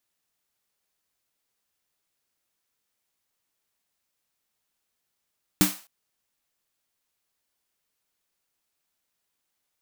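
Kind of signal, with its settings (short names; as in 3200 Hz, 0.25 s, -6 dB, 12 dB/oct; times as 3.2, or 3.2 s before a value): snare drum length 0.26 s, tones 190 Hz, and 300 Hz, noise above 540 Hz, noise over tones -3.5 dB, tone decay 0.20 s, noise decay 0.38 s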